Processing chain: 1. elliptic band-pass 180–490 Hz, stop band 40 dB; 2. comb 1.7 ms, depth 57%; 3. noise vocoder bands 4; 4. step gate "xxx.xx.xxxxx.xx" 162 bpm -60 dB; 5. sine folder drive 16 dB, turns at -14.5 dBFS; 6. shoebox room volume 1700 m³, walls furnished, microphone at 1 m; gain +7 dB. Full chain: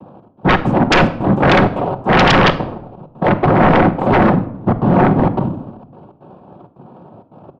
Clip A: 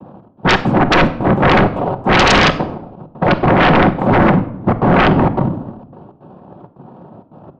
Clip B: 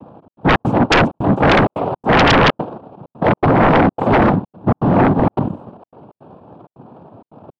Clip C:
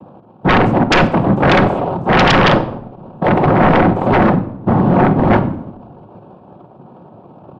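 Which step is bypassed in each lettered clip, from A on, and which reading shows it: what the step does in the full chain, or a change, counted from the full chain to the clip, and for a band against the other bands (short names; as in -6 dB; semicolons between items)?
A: 2, 4 kHz band +2.5 dB; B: 6, echo-to-direct -8.5 dB to none; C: 4, momentary loudness spread change -1 LU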